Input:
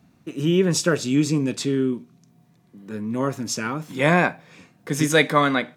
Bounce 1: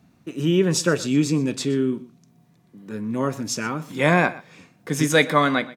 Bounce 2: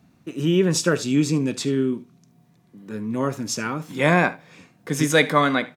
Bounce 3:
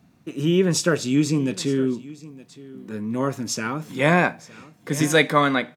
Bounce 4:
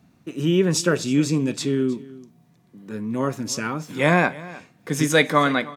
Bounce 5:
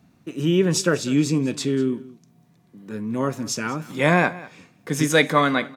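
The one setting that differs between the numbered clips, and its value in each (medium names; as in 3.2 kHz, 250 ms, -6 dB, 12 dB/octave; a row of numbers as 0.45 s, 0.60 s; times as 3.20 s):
delay, time: 122 ms, 74 ms, 915 ms, 312 ms, 194 ms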